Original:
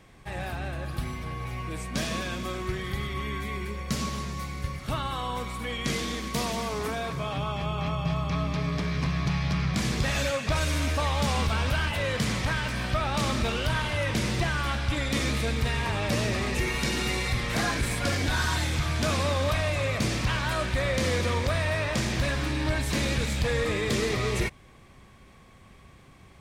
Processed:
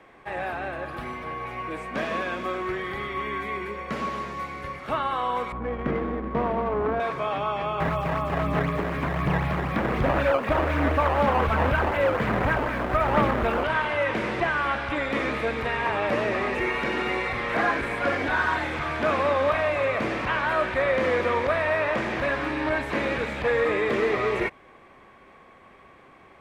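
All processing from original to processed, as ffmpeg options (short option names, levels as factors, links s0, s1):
-filter_complex "[0:a]asettb=1/sr,asplit=3[s0][s1][s2];[s0]atrim=end=5.524[s3];[s1]atrim=start=5.52:end=7,asetpts=PTS-STARTPTS,afade=t=in:d=0.004:c=qsin,afade=t=out:st=1.476:d=0.004:c=qsin,adynamicsmooth=sensitivity=2.5:basefreq=520,aemphasis=mode=reproduction:type=bsi[s4];[s2]atrim=start=6.996[s5];[s3][s4]acrossfade=d=0.004:c1=hsin:c2=qsin[s6];[s6][s5]acrossfade=d=0.004:c1=qsin:c2=hsin,asettb=1/sr,asplit=3[s7][s8][s9];[s7]atrim=end=7.804[s10];[s8]atrim=start=7.8:end=13.64,asetpts=PTS-STARTPTS,afade=t=in:d=0.004:c=qsin,afade=t=out:st=5.836:d=0.004:c=qsin,lowshelf=f=200:g=9.5,aphaser=in_gain=1:out_gain=1:delay=3.7:decay=0.32:speed=1.3:type=sinusoidal,acrusher=samples=14:mix=1:aa=0.000001:lfo=1:lforange=22.4:lforate=4[s11];[s9]atrim=start=13.636[s12];[s10][s11]acrossfade=d=0.004:c1=hsin:c2=qsin[s13];[s13][s12]acrossfade=d=0.004:c1=qsin:c2=hsin,acrossover=split=3200[s14][s15];[s15]acompressor=threshold=0.00891:ratio=4:attack=1:release=60[s16];[s14][s16]amix=inputs=2:normalize=0,acrossover=split=290 2500:gain=0.126 1 0.126[s17][s18][s19];[s17][s18][s19]amix=inputs=3:normalize=0,volume=2.24"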